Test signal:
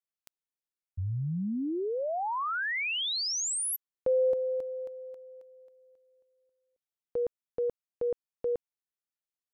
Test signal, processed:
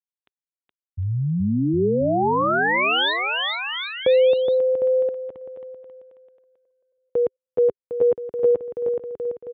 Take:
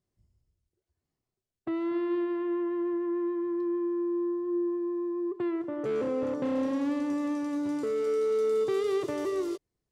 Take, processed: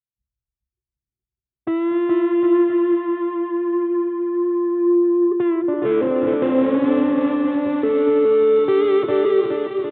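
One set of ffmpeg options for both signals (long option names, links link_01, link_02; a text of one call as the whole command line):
ffmpeg -i in.wav -af "highpass=77,anlmdn=0.00158,equalizer=frequency=400:width_type=o:width=0.23:gain=2.5,dynaudnorm=framelen=110:gausssize=13:maxgain=12dB,aecho=1:1:420|756|1025|1240|1412:0.631|0.398|0.251|0.158|0.1,aresample=8000,aresample=44100,volume=-2.5dB" out.wav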